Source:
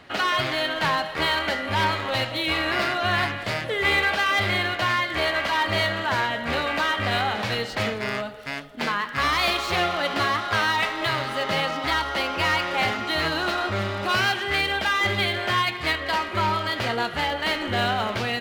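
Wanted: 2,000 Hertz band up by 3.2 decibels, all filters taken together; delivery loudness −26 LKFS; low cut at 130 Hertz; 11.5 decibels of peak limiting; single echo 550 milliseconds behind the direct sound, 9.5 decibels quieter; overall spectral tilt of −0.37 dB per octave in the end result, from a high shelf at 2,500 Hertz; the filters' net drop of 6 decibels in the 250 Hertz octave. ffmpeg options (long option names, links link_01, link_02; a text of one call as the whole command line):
ffmpeg -i in.wav -af "highpass=130,equalizer=frequency=250:width_type=o:gain=-8,equalizer=frequency=2000:width_type=o:gain=7.5,highshelf=frequency=2500:gain=-8.5,alimiter=limit=-20.5dB:level=0:latency=1,aecho=1:1:550:0.335,volume=1.5dB" out.wav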